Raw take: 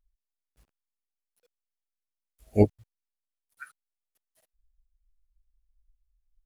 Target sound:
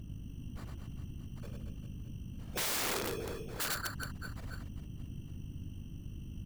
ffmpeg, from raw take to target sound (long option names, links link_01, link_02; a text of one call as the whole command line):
ffmpeg -i in.wav -af "lowshelf=frequency=470:gain=-7,bandreject=frequency=60:width_type=h:width=6,bandreject=frequency=120:width_type=h:width=6,bandreject=frequency=180:width_type=h:width=6,bandreject=frequency=240:width_type=h:width=6,bandreject=frequency=300:width_type=h:width=6,bandreject=frequency=360:width_type=h:width=6,bandreject=frequency=420:width_type=h:width=6,bandreject=frequency=480:width_type=h:width=6,bandreject=frequency=540:width_type=h:width=6,areverse,acompressor=threshold=-40dB:ratio=16,areverse,highpass=frequency=230:width=0.5412,highpass=frequency=230:width=1.3066,equalizer=frequency=300:width_type=q:width=4:gain=4,equalizer=frequency=450:width_type=q:width=4:gain=6,equalizer=frequency=860:width_type=q:width=4:gain=-5,equalizer=frequency=2400:width_type=q:width=4:gain=6,equalizer=frequency=4100:width_type=q:width=4:gain=9,lowpass=frequency=6000:width=0.5412,lowpass=frequency=6000:width=1.3066,aeval=exprs='val(0)+0.000794*(sin(2*PI*50*n/s)+sin(2*PI*2*50*n/s)/2+sin(2*PI*3*50*n/s)/3+sin(2*PI*4*50*n/s)/4+sin(2*PI*5*50*n/s)/5)':channel_layout=same,acrusher=samples=15:mix=1:aa=0.000001,aeval=exprs='0.0282*(cos(1*acos(clip(val(0)/0.0282,-1,1)))-cos(1*PI/2))+0.00794*(cos(3*acos(clip(val(0)/0.0282,-1,1)))-cos(3*PI/2))+0.0126*(cos(5*acos(clip(val(0)/0.0282,-1,1)))-cos(5*PI/2))':channel_layout=same,afftfilt=real='hypot(re,im)*cos(2*PI*random(0))':imag='hypot(re,im)*sin(2*PI*random(1))':win_size=512:overlap=0.75,aecho=1:1:100|230|399|618.7|904.3:0.631|0.398|0.251|0.158|0.1,aeval=exprs='(mod(200*val(0)+1,2)-1)/200':channel_layout=same,volume=17dB" out.wav